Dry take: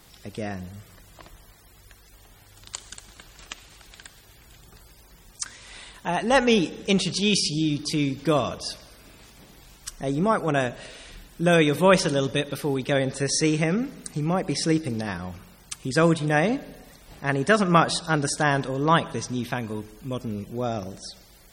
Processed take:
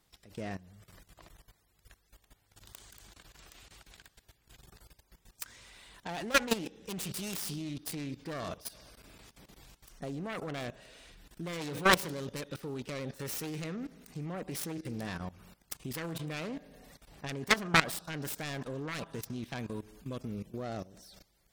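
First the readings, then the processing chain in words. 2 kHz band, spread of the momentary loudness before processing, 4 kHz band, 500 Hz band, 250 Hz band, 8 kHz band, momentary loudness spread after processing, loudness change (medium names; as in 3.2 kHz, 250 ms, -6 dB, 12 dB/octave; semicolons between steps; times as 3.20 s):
-7.5 dB, 20 LU, -9.5 dB, -14.5 dB, -14.0 dB, -10.0 dB, 25 LU, -11.5 dB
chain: self-modulated delay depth 0.57 ms; level held to a coarse grid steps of 17 dB; trim -4 dB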